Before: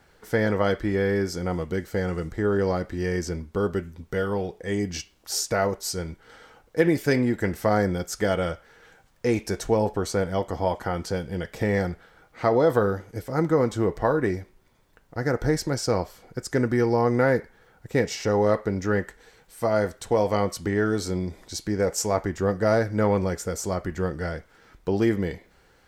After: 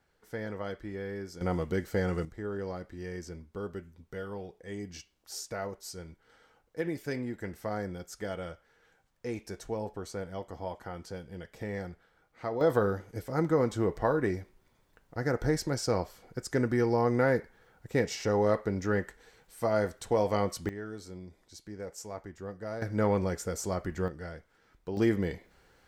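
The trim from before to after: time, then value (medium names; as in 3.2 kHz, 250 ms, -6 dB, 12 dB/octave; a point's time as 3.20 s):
-14.5 dB
from 1.41 s -3 dB
from 2.25 s -13 dB
from 12.61 s -5 dB
from 20.69 s -17 dB
from 22.82 s -5 dB
from 24.08 s -11.5 dB
from 24.97 s -4 dB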